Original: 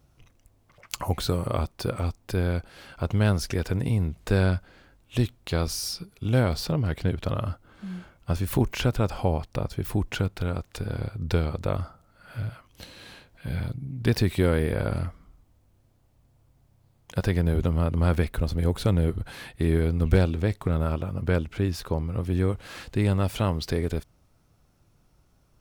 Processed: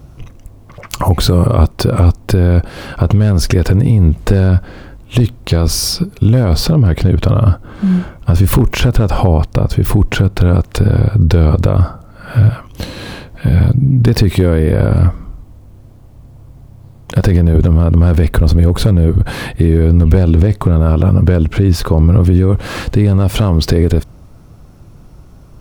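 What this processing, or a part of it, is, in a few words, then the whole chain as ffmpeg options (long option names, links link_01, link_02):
mastering chain: -af "equalizer=frequency=1100:width_type=o:width=0.25:gain=3,acompressor=threshold=-25dB:ratio=2,tiltshelf=frequency=720:gain=5,asoftclip=type=hard:threshold=-13.5dB,alimiter=level_in=21dB:limit=-1dB:release=50:level=0:latency=1,volume=-1dB"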